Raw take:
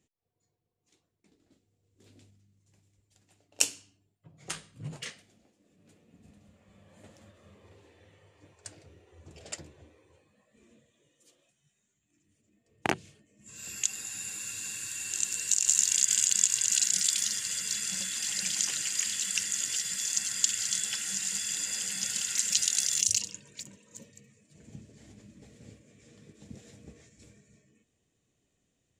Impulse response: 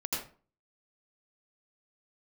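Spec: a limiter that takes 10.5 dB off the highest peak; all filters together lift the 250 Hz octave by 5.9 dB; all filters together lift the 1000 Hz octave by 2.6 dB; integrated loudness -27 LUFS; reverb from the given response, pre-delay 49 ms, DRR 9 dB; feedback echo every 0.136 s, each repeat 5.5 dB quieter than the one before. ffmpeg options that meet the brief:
-filter_complex "[0:a]equalizer=f=250:t=o:g=8,equalizer=f=1k:t=o:g=3,alimiter=limit=-13dB:level=0:latency=1,aecho=1:1:136|272|408|544|680|816|952:0.531|0.281|0.149|0.079|0.0419|0.0222|0.0118,asplit=2[a][b];[1:a]atrim=start_sample=2205,adelay=49[c];[b][c]afir=irnorm=-1:irlink=0,volume=-13.5dB[d];[a][d]amix=inputs=2:normalize=0,volume=1dB"

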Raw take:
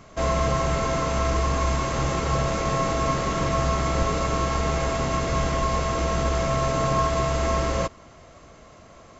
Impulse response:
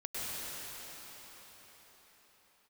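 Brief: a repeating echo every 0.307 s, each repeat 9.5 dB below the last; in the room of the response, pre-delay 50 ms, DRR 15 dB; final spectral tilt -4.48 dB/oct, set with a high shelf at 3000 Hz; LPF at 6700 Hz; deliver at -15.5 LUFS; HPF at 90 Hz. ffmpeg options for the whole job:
-filter_complex "[0:a]highpass=90,lowpass=6.7k,highshelf=f=3k:g=5.5,aecho=1:1:307|614|921|1228:0.335|0.111|0.0365|0.012,asplit=2[a][b];[1:a]atrim=start_sample=2205,adelay=50[c];[b][c]afir=irnorm=-1:irlink=0,volume=-20dB[d];[a][d]amix=inputs=2:normalize=0,volume=8.5dB"

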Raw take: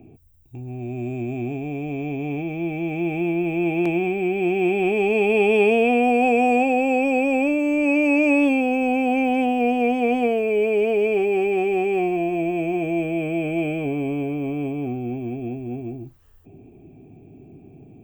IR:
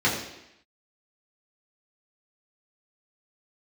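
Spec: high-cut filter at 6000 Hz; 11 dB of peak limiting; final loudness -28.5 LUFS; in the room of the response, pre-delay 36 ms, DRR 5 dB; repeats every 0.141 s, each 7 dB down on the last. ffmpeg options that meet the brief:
-filter_complex "[0:a]lowpass=6k,alimiter=limit=-18.5dB:level=0:latency=1,aecho=1:1:141|282|423|564|705:0.447|0.201|0.0905|0.0407|0.0183,asplit=2[a][b];[1:a]atrim=start_sample=2205,adelay=36[c];[b][c]afir=irnorm=-1:irlink=0,volume=-20.5dB[d];[a][d]amix=inputs=2:normalize=0,volume=-5.5dB"

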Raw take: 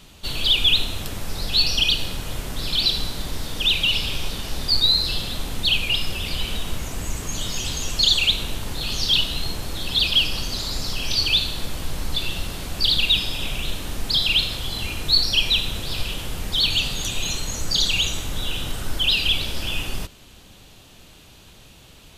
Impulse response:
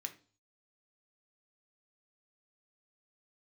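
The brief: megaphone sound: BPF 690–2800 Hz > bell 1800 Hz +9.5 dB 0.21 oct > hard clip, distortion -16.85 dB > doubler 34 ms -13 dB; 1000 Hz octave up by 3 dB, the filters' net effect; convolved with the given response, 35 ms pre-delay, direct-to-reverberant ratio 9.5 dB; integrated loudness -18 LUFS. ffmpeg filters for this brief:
-filter_complex "[0:a]equalizer=f=1k:t=o:g=5,asplit=2[a][b];[1:a]atrim=start_sample=2205,adelay=35[c];[b][c]afir=irnorm=-1:irlink=0,volume=-7dB[d];[a][d]amix=inputs=2:normalize=0,highpass=690,lowpass=2.8k,equalizer=f=1.8k:t=o:w=0.21:g=9.5,asoftclip=type=hard:threshold=-19dB,asplit=2[e][f];[f]adelay=34,volume=-13dB[g];[e][g]amix=inputs=2:normalize=0,volume=8.5dB"

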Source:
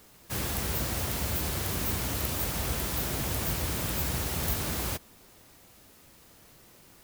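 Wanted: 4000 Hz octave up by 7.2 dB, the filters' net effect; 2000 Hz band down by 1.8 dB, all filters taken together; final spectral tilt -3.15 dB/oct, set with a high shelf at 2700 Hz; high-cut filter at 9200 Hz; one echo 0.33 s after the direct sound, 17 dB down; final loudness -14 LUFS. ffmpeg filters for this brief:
-af "lowpass=9.2k,equalizer=f=2k:t=o:g=-6.5,highshelf=f=2.7k:g=4.5,equalizer=f=4k:t=o:g=7,aecho=1:1:330:0.141,volume=15.5dB"

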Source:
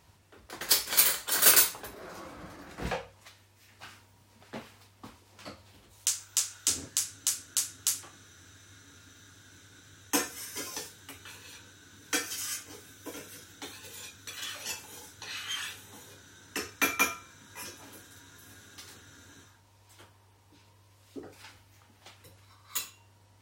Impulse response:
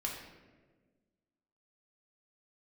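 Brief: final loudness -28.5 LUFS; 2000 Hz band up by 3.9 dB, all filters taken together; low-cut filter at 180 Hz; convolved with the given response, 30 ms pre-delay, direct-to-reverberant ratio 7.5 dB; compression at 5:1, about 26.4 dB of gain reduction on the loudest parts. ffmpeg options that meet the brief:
-filter_complex "[0:a]highpass=180,equalizer=f=2k:t=o:g=5,acompressor=threshold=-47dB:ratio=5,asplit=2[a][b];[1:a]atrim=start_sample=2205,adelay=30[c];[b][c]afir=irnorm=-1:irlink=0,volume=-9.5dB[d];[a][d]amix=inputs=2:normalize=0,volume=20.5dB"

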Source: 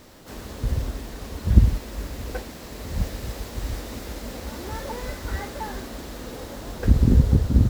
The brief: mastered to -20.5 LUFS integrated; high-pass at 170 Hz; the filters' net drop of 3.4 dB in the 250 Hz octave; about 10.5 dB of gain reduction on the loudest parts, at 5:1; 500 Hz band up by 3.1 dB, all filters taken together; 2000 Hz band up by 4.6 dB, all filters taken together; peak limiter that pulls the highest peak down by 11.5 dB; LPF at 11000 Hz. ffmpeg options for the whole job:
-af "highpass=170,lowpass=11k,equalizer=f=250:t=o:g=-3.5,equalizer=f=500:t=o:g=4.5,equalizer=f=2k:t=o:g=5.5,acompressor=threshold=-30dB:ratio=5,volume=18dB,alimiter=limit=-11dB:level=0:latency=1"

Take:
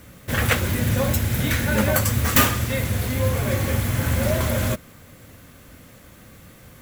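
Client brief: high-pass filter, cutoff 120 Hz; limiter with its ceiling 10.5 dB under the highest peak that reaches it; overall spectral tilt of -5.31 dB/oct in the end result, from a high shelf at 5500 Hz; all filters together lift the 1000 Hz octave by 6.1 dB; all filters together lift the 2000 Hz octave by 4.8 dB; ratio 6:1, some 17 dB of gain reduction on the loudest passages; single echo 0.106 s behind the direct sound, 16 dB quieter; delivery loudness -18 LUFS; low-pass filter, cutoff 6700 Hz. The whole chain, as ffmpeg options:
-af "highpass=120,lowpass=6.7k,equalizer=f=1k:t=o:g=6.5,equalizer=f=2k:t=o:g=4.5,highshelf=f=5.5k:g=-5.5,acompressor=threshold=-30dB:ratio=6,alimiter=level_in=3dB:limit=-24dB:level=0:latency=1,volume=-3dB,aecho=1:1:106:0.158,volume=19dB"

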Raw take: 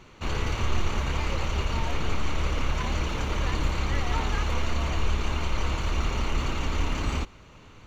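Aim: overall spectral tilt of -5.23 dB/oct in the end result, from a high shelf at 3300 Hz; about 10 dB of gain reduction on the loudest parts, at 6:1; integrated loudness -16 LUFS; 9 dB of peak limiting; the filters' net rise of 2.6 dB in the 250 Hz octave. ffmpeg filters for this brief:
-af "equalizer=f=250:t=o:g=3.5,highshelf=f=3.3k:g=-7.5,acompressor=threshold=-31dB:ratio=6,volume=26dB,alimiter=limit=-4.5dB:level=0:latency=1"

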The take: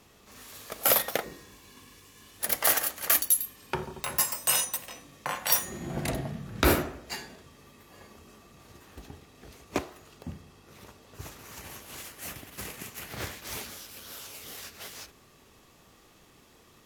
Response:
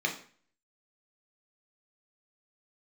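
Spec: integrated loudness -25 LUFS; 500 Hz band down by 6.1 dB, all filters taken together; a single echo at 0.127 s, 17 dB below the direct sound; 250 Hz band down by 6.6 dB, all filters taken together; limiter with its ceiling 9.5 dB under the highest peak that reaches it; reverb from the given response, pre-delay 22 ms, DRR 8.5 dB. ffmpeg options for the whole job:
-filter_complex "[0:a]equalizer=f=250:t=o:g=-7,equalizer=f=500:t=o:g=-6,alimiter=limit=-15.5dB:level=0:latency=1,aecho=1:1:127:0.141,asplit=2[a][b];[1:a]atrim=start_sample=2205,adelay=22[c];[b][c]afir=irnorm=-1:irlink=0,volume=-17dB[d];[a][d]amix=inputs=2:normalize=0,volume=7.5dB"

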